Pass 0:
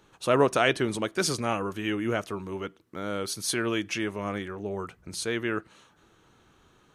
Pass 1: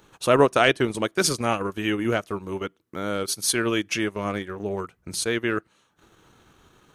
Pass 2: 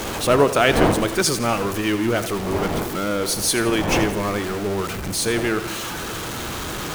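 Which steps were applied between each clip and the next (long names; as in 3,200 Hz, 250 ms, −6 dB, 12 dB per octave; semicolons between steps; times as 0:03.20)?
high-shelf EQ 11,000 Hz +7.5 dB; transient designer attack 0 dB, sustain −12 dB; level +4.5 dB
converter with a step at zero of −23.5 dBFS; wind on the microphone 610 Hz −29 dBFS; echo with a time of its own for lows and highs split 330 Hz, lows 160 ms, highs 83 ms, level −13 dB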